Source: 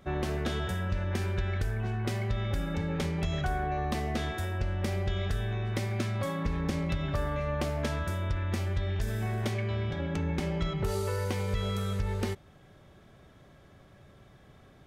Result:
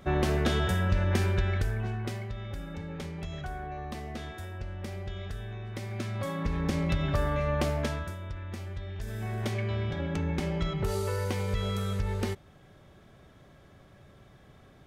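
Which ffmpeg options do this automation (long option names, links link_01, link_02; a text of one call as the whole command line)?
ffmpeg -i in.wav -af "volume=23dB,afade=type=out:start_time=1.17:duration=1.14:silence=0.251189,afade=type=in:start_time=5.73:duration=1.22:silence=0.316228,afade=type=out:start_time=7.69:duration=0.47:silence=0.298538,afade=type=in:start_time=8.94:duration=0.65:silence=0.398107" out.wav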